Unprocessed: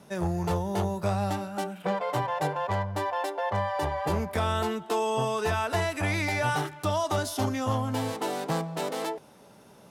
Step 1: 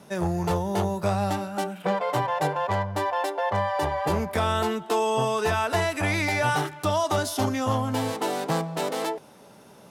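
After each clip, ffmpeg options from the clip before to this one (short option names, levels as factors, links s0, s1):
-af "lowshelf=f=71:g=-7,volume=1.5"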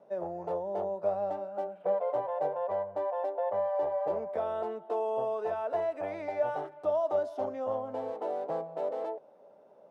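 -af "bandpass=f=580:t=q:w=3.7:csg=0"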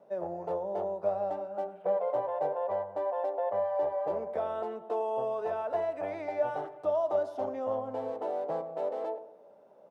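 -filter_complex "[0:a]asplit=2[s0][s1];[s1]adelay=99,lowpass=f=1200:p=1,volume=0.266,asplit=2[s2][s3];[s3]adelay=99,lowpass=f=1200:p=1,volume=0.42,asplit=2[s4][s5];[s5]adelay=99,lowpass=f=1200:p=1,volume=0.42,asplit=2[s6][s7];[s7]adelay=99,lowpass=f=1200:p=1,volume=0.42[s8];[s0][s2][s4][s6][s8]amix=inputs=5:normalize=0"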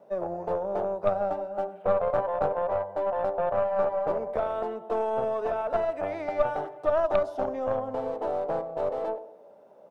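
-af "aeval=exprs='0.141*(cos(1*acos(clip(val(0)/0.141,-1,1)))-cos(1*PI/2))+0.0355*(cos(4*acos(clip(val(0)/0.141,-1,1)))-cos(4*PI/2))+0.0126*(cos(6*acos(clip(val(0)/0.141,-1,1)))-cos(6*PI/2))':c=same,volume=1.58"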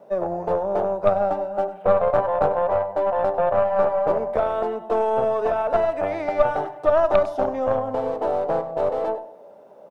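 -af "aecho=1:1:98:0.158,volume=2.11"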